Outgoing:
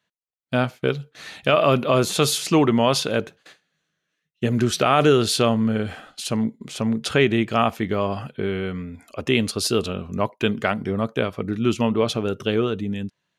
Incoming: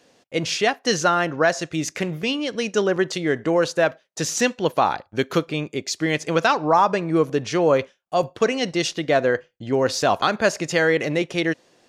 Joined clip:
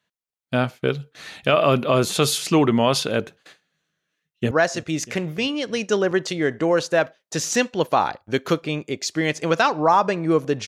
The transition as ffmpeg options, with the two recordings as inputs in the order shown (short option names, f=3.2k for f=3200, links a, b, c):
-filter_complex "[0:a]apad=whole_dur=10.67,atrim=end=10.67,atrim=end=4.512[a];[1:a]atrim=start=1.358:end=7.52[b];[a][b]acrossfade=d=0.004:c1=hsin:c2=hsin,asplit=2[c][d];[d]afade=t=in:st=4.07:d=0.01,afade=t=out:st=4.51:d=0.01,aecho=0:1:320|640|960|1280|1600|1920|2240:0.141254|0.0918149|0.0596797|0.0387918|0.0252147|0.0163895|0.0106532[e];[c][e]amix=inputs=2:normalize=0"